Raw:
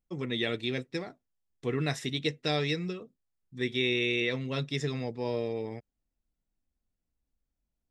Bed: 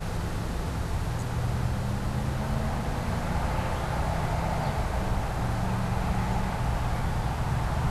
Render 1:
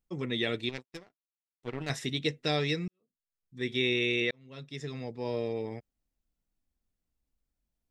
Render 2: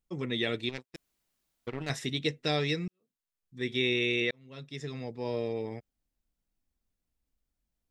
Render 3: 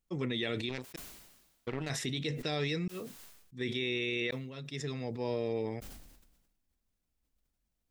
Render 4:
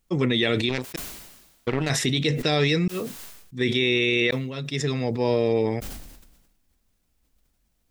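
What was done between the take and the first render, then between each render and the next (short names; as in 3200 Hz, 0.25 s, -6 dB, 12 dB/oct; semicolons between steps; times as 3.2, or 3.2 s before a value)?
0.69–1.9 power-law curve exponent 2; 2.88–3.74 fade in quadratic; 4.31–5.49 fade in
0.96–1.67 room tone
limiter -24 dBFS, peak gain reduction 8 dB; sustainer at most 49 dB/s
gain +12 dB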